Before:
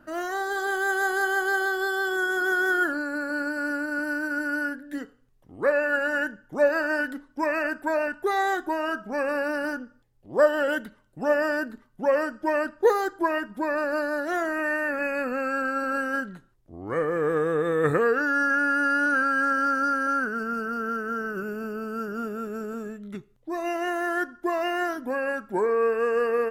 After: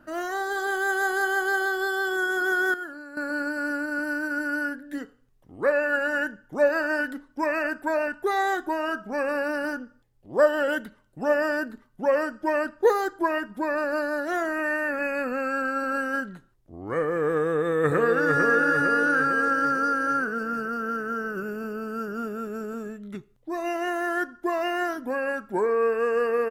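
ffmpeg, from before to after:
ffmpeg -i in.wav -filter_complex "[0:a]asplit=2[link_01][link_02];[link_02]afade=type=in:start_time=17.46:duration=0.01,afade=type=out:start_time=18.36:duration=0.01,aecho=0:1:450|900|1350|1800|2250|2700|3150|3600|4050:0.707946|0.424767|0.25486|0.152916|0.0917498|0.0550499|0.0330299|0.019818|0.0118908[link_03];[link_01][link_03]amix=inputs=2:normalize=0,asplit=3[link_04][link_05][link_06];[link_04]atrim=end=2.742[link_07];[link_05]atrim=start=2.738:end=3.172,asetpts=PTS-STARTPTS,volume=-11.5dB[link_08];[link_06]atrim=start=3.168[link_09];[link_07][link_08]acrossfade=duration=0.004:curve1=hsin:curve2=hsin[link_10];[link_10][link_09]acrossfade=duration=0.004:curve1=hsin:curve2=hsin" out.wav

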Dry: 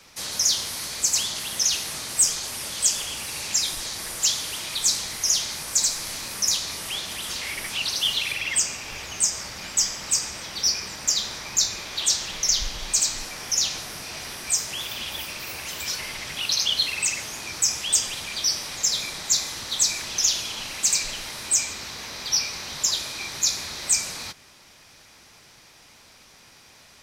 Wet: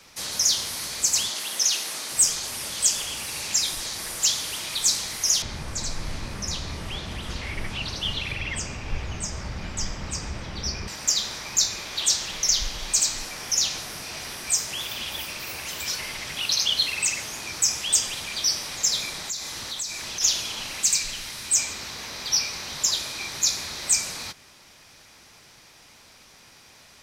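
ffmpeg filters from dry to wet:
ffmpeg -i in.wav -filter_complex "[0:a]asettb=1/sr,asplit=3[link_01][link_02][link_03];[link_01]atrim=end=1.304[link_04];[link_02]atrim=start=1.3:end=2.12,asetpts=PTS-STARTPTS,afade=type=in:duration=0.004:curve=qsin,afade=type=out:start_time=0.816:duration=0.004:curve=qsin,highpass=270[link_05];[link_03]atrim=start=2.116[link_06];[link_04][link_05]acrossfade=duration=0.004:curve1=hsin:curve2=qsin[link_07];[link_07][link_06]acrossfade=duration=0.004:curve1=qsin:curve2=hsin,asettb=1/sr,asplit=3[link_08][link_09][link_10];[link_08]atrim=end=5.424[link_11];[link_09]atrim=start=5.42:end=10.88,asetpts=PTS-STARTPTS,afade=type=in:duration=0.004:curve=qsin,afade=type=out:start_time=5.456:duration=0.004:curve=qsin,aemphasis=mode=reproduction:type=riaa[link_12];[link_10]atrim=start=10.876[link_13];[link_11][link_12]acrossfade=duration=0.004:curve1=hsin:curve2=qsin[link_14];[link_14][link_13]acrossfade=duration=0.004:curve1=qsin:curve2=hsin,asplit=3[link_15][link_16][link_17];[link_15]afade=type=out:start_time=19.27:duration=0.02[link_18];[link_16]acompressor=threshold=-30dB:ratio=3:attack=3.2:release=140:knee=1:detection=peak,afade=type=in:start_time=19.27:duration=0.02,afade=type=out:start_time=20.2:duration=0.02[link_19];[link_17]afade=type=in:start_time=20.2:duration=0.02[link_20];[link_18][link_19][link_20]amix=inputs=3:normalize=0,asettb=1/sr,asplit=3[link_21][link_22][link_23];[link_21]atrim=end=20.834[link_24];[link_22]atrim=start=20.83:end=21.56,asetpts=PTS-STARTPTS,afade=type=in:duration=0.004:curve=qsin,afade=type=out:start_time=0.726:duration=0.004:curve=qsin,equalizer=frequency=600:width_type=o:width=2.4:gain=-6[link_25];[link_23]atrim=start=21.556[link_26];[link_24][link_25]acrossfade=duration=0.004:curve1=hsin:curve2=qsin[link_27];[link_27][link_26]acrossfade=duration=0.004:curve1=qsin:curve2=hsin" out.wav

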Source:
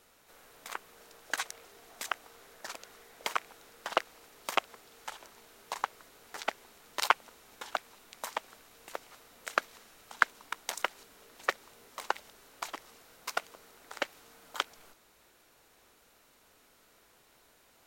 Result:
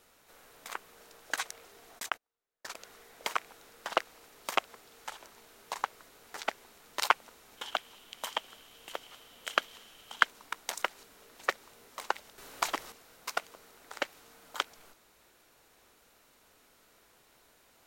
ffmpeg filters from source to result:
ffmpeg -i in.wav -filter_complex "[0:a]asplit=3[link_01][link_02][link_03];[link_01]afade=type=out:start_time=1.98:duration=0.02[link_04];[link_02]agate=range=-37dB:threshold=-45dB:ratio=16:release=100:detection=peak,afade=type=in:start_time=1.98:duration=0.02,afade=type=out:start_time=2.75:duration=0.02[link_05];[link_03]afade=type=in:start_time=2.75:duration=0.02[link_06];[link_04][link_05][link_06]amix=inputs=3:normalize=0,asettb=1/sr,asplit=3[link_07][link_08][link_09];[link_07]atrim=end=7.574[link_10];[link_08]atrim=start=7.57:end=10.25,asetpts=PTS-STARTPTS,afade=type=in:duration=0.004:curve=qsin,afade=type=out:start_time=2.676:duration=0.004:curve=qsin,equalizer=frequency=3100:width_type=o:width=0.28:gain=13.5[link_11];[link_09]atrim=start=10.246[link_12];[link_10][link_11]acrossfade=duration=0.004:curve1=hsin:curve2=qsin[link_13];[link_13][link_12]acrossfade=duration=0.004:curve1=qsin:curve2=hsin,asplit=3[link_14][link_15][link_16];[link_14]atrim=end=12.382[link_17];[link_15]atrim=start=12.378:end=12.922,asetpts=PTS-STARTPTS,volume=8dB[link_18];[link_16]atrim=start=12.918[link_19];[link_17][link_18]acrossfade=duration=0.004:curve1=hsin:curve2=hsin[link_20];[link_20][link_19]acrossfade=duration=0.004:curve1=hsin:curve2=hsin" out.wav

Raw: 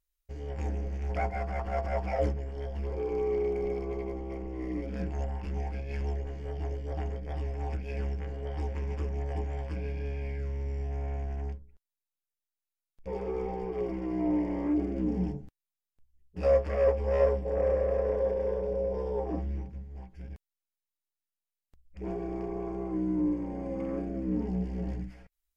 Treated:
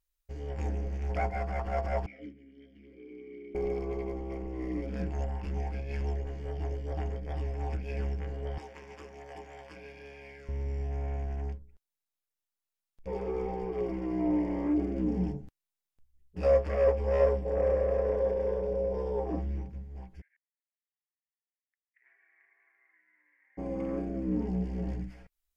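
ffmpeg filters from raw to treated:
ffmpeg -i in.wav -filter_complex "[0:a]asettb=1/sr,asplit=3[link_01][link_02][link_03];[link_01]atrim=end=2.064[link_04];[link_02]atrim=start=2.06:end=3.55,asetpts=PTS-STARTPTS,afade=type=in:duration=0.004:curve=qsin,afade=type=out:start_time=1.486:duration=0.004:curve=qsin,asplit=3[link_05][link_06][link_07];[link_05]bandpass=frequency=270:width_type=q:width=8,volume=0dB[link_08];[link_06]bandpass=frequency=2290:width_type=q:width=8,volume=-6dB[link_09];[link_07]bandpass=frequency=3010:width_type=q:width=8,volume=-9dB[link_10];[link_08][link_09][link_10]amix=inputs=3:normalize=0[link_11];[link_03]atrim=start=3.546[link_12];[link_04][link_11]acrossfade=duration=0.004:curve1=hsin:curve2=qsin[link_13];[link_13][link_12]acrossfade=duration=0.004:curve1=qsin:curve2=hsin,asettb=1/sr,asplit=3[link_14][link_15][link_16];[link_14]atrim=end=8.584[link_17];[link_15]atrim=start=8.58:end=10.49,asetpts=PTS-STARTPTS,afade=type=in:duration=0.004:curve=qsin,afade=type=out:start_time=1.906:duration=0.004:curve=qsin,highpass=frequency=950:poles=1[link_18];[link_16]atrim=start=10.486[link_19];[link_17][link_18]acrossfade=duration=0.004:curve1=hsin:curve2=qsin[link_20];[link_20][link_19]acrossfade=duration=0.004:curve1=qsin:curve2=hsin,asplit=3[link_21][link_22][link_23];[link_21]afade=type=out:start_time=20.2:duration=0.02[link_24];[link_22]asuperpass=centerf=1900:order=4:qfactor=4.6,afade=type=in:start_time=20.2:duration=0.02,afade=type=out:start_time=23.57:duration=0.02[link_25];[link_23]afade=type=in:start_time=23.57:duration=0.02[link_26];[link_24][link_25][link_26]amix=inputs=3:normalize=0" out.wav

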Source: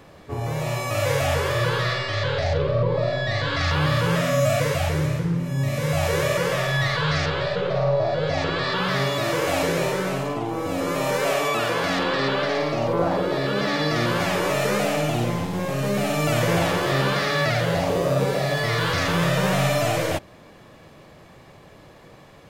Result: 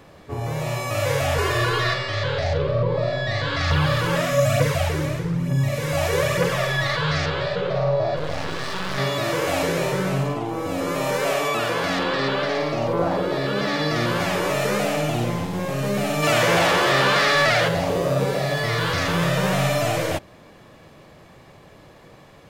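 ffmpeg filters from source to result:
ffmpeg -i in.wav -filter_complex "[0:a]asettb=1/sr,asplit=3[link_01][link_02][link_03];[link_01]atrim=end=1.384[link_04];[link_02]atrim=start=1.38:end=1.94,asetpts=PTS-STARTPTS,afade=type=in:duration=0.004:curve=qsin,afade=type=out:start_time=0.556:duration=0.004:curve=qsin,aecho=1:1:2.8:0.95,atrim=end_sample=24696[link_05];[link_03]atrim=start=1.936[link_06];[link_04][link_05]acrossfade=duration=0.004:curve1=hsin:curve2=qsin[link_07];[link_07][link_06]acrossfade=duration=0.004:curve1=qsin:curve2=hsin,asettb=1/sr,asplit=3[link_08][link_09][link_10];[link_08]atrim=end=3.704[link_11];[link_09]atrim=start=3.7:end=6.96,asetpts=PTS-STARTPTS,afade=type=in:duration=0.004:curve=qsin,afade=type=out:start_time=3.256:duration=0.004:curve=qsin,aphaser=in_gain=1:out_gain=1:delay=3.7:decay=0.44:speed=1.1:type=triangular[link_12];[link_10]atrim=start=6.956[link_13];[link_11][link_12]acrossfade=duration=0.004:curve1=hsin:curve2=qsin[link_14];[link_14][link_13]acrossfade=duration=0.004:curve1=qsin:curve2=hsin,asettb=1/sr,asplit=3[link_15][link_16][link_17];[link_15]atrim=end=8.164[link_18];[link_16]atrim=start=8.16:end=8.98,asetpts=PTS-STARTPTS,afade=type=in:duration=0.004:curve=qsin,afade=type=out:start_time=0.816:duration=0.004:curve=qsin,aeval=exprs='max(val(0),0)':channel_layout=same[link_19];[link_17]atrim=start=8.976[link_20];[link_18][link_19]acrossfade=duration=0.004:curve1=hsin:curve2=qsin[link_21];[link_21][link_20]acrossfade=duration=0.004:curve1=qsin:curve2=hsin,asettb=1/sr,asplit=3[link_22][link_23][link_24];[link_22]atrim=end=9.924[link_25];[link_23]atrim=start=9.92:end=10.35,asetpts=PTS-STARTPTS,afade=type=in:duration=0.004:curve=qsin,afade=type=out:start_time=0.426:duration=0.004:curve=qsin,equalizer=frequency=140:width_type=o:width=0.77:gain=8[link_26];[link_24]atrim=start=10.346[link_27];[link_25][link_26]acrossfade=duration=0.004:curve1=hsin:curve2=qsin[link_28];[link_28][link_27]acrossfade=duration=0.004:curve1=qsin:curve2=hsin,asplit=3[link_29][link_30][link_31];[link_29]afade=type=out:start_time=16.22:duration=0.02[link_32];[link_30]asplit=2[link_33][link_34];[link_34]highpass=frequency=720:poles=1,volume=15dB,asoftclip=type=tanh:threshold=-9.5dB[link_35];[link_33][link_35]amix=inputs=2:normalize=0,lowpass=frequency=6100:poles=1,volume=-6dB,afade=type=in:start_time=16.22:duration=0.02,afade=type=out:start_time=17.67:duration=0.02[link_36];[link_31]afade=type=in:start_time=17.67:duration=0.02[link_37];[link_32][link_36][link_37]amix=inputs=3:normalize=0" out.wav

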